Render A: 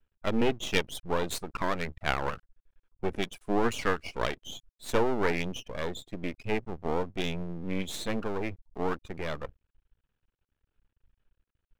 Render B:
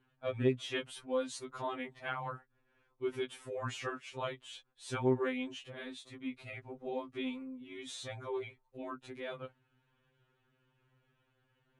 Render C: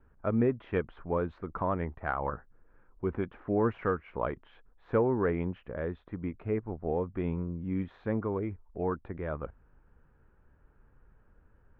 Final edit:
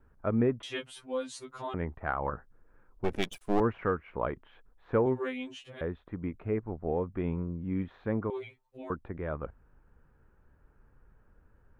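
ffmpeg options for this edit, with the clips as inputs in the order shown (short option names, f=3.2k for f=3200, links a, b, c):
-filter_complex "[1:a]asplit=3[a][b][c];[2:a]asplit=5[d][e][f][g][h];[d]atrim=end=0.632[i];[a]atrim=start=0.628:end=1.742[j];[e]atrim=start=1.738:end=3.042[k];[0:a]atrim=start=3.038:end=3.602[l];[f]atrim=start=3.598:end=5.062[m];[b]atrim=start=5.058:end=5.812[n];[g]atrim=start=5.808:end=8.302[o];[c]atrim=start=8.298:end=8.902[p];[h]atrim=start=8.898[q];[i][j]acrossfade=d=0.004:c1=hsin:c2=hsin[r];[r][k]acrossfade=d=0.004:c1=hsin:c2=hsin[s];[s][l]acrossfade=d=0.004:c1=hsin:c2=hsin[t];[t][m]acrossfade=d=0.004:c1=hsin:c2=hsin[u];[u][n]acrossfade=d=0.004:c1=hsin:c2=hsin[v];[v][o]acrossfade=d=0.004:c1=hsin:c2=hsin[w];[w][p]acrossfade=d=0.004:c1=hsin:c2=hsin[x];[x][q]acrossfade=d=0.004:c1=hsin:c2=hsin"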